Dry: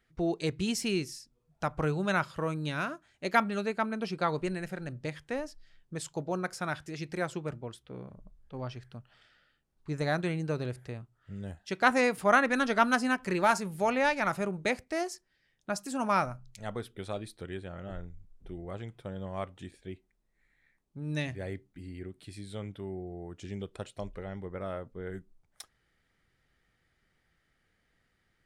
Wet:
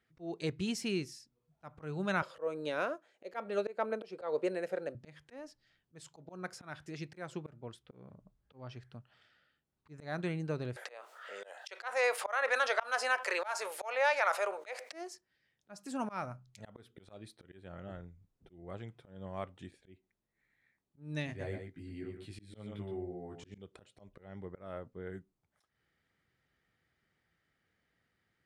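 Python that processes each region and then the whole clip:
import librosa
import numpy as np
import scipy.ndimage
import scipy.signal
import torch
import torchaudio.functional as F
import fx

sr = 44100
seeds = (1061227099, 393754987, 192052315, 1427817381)

y = fx.chain(x, sr, fx.highpass(hz=320.0, slope=12),
    fx.peak_eq(hz=510.0, db=15.0, octaves=0.74), at=(2.22, 4.95))
y = fx.chain(y, sr, fx.ellip_highpass(hz=510.0, order=4, stop_db=80),
    fx.env_flatten(amount_pct=50), at=(10.76, 14.93))
y = fx.chain(y, sr, fx.highpass(hz=54.0, slope=12),
    fx.doubler(ms=19.0, db=-2),
    fx.echo_single(ms=119, db=-6.5), at=(21.27, 23.58))
y = scipy.signal.sosfilt(scipy.signal.butter(2, 73.0, 'highpass', fs=sr, output='sos'), y)
y = fx.high_shelf(y, sr, hz=8000.0, db=-8.0)
y = fx.auto_swell(y, sr, attack_ms=218.0)
y = y * librosa.db_to_amplitude(-4.0)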